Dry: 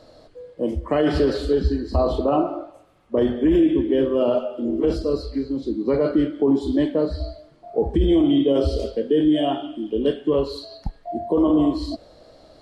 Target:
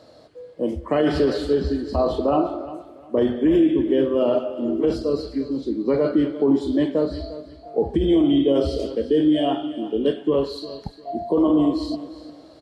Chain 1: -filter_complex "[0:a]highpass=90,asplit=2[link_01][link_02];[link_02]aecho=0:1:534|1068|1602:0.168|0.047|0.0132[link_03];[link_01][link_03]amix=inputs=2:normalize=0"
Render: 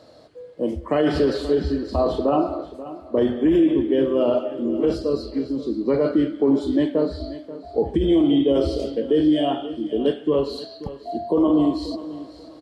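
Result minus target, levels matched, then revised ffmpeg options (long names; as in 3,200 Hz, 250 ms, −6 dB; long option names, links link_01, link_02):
echo 182 ms late
-filter_complex "[0:a]highpass=90,asplit=2[link_01][link_02];[link_02]aecho=0:1:352|704|1056:0.168|0.047|0.0132[link_03];[link_01][link_03]amix=inputs=2:normalize=0"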